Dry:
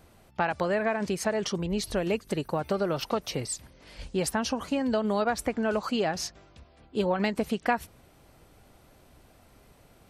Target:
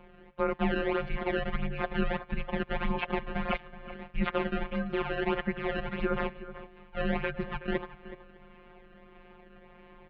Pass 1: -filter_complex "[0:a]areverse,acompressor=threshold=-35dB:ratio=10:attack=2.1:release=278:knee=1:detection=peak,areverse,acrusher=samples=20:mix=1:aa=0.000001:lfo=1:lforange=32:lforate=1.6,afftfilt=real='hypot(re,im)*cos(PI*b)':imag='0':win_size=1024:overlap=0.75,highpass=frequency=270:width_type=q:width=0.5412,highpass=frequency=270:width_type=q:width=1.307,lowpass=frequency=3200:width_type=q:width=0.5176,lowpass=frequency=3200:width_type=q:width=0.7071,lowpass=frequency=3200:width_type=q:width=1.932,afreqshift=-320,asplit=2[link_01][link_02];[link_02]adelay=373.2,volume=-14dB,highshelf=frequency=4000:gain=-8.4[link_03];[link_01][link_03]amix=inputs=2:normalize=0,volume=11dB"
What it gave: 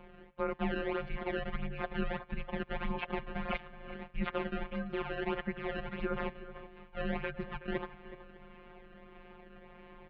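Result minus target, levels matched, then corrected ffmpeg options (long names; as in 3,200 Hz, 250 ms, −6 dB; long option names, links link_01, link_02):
downward compressor: peak gain reduction +5.5 dB
-filter_complex "[0:a]areverse,acompressor=threshold=-29dB:ratio=10:attack=2.1:release=278:knee=1:detection=peak,areverse,acrusher=samples=20:mix=1:aa=0.000001:lfo=1:lforange=32:lforate=1.6,afftfilt=real='hypot(re,im)*cos(PI*b)':imag='0':win_size=1024:overlap=0.75,highpass=frequency=270:width_type=q:width=0.5412,highpass=frequency=270:width_type=q:width=1.307,lowpass=frequency=3200:width_type=q:width=0.5176,lowpass=frequency=3200:width_type=q:width=0.7071,lowpass=frequency=3200:width_type=q:width=1.932,afreqshift=-320,asplit=2[link_01][link_02];[link_02]adelay=373.2,volume=-14dB,highshelf=frequency=4000:gain=-8.4[link_03];[link_01][link_03]amix=inputs=2:normalize=0,volume=11dB"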